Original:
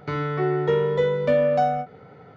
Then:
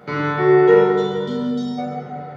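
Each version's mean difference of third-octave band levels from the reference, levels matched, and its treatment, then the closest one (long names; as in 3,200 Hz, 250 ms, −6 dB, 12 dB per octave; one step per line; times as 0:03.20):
5.0 dB: gain on a spectral selection 0:00.78–0:01.78, 250–3,000 Hz −28 dB
high-pass filter 130 Hz 12 dB per octave
dense smooth reverb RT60 2.2 s, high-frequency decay 0.55×, DRR −7 dB
level +1.5 dB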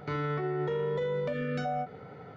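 4.0 dB: gain on a spectral selection 0:01.33–0:01.65, 510–1,200 Hz −22 dB
downward compressor, threshold −22 dBFS, peak gain reduction 6.5 dB
brickwall limiter −24.5 dBFS, peak gain reduction 9.5 dB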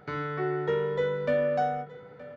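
1.5 dB: parametric band 1,600 Hz +6.5 dB 0.38 octaves
mains-hum notches 50/100/150 Hz
single-tap delay 921 ms −19 dB
level −6.5 dB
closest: third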